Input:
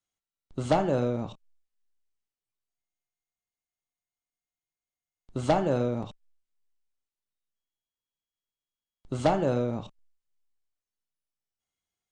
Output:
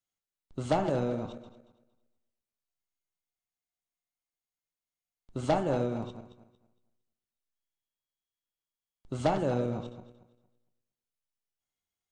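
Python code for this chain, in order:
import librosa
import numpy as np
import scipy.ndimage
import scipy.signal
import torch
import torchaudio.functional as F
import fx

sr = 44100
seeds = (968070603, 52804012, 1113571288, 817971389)

y = fx.reverse_delay_fb(x, sr, ms=115, feedback_pct=49, wet_db=-10.5)
y = y * librosa.db_to_amplitude(-3.5)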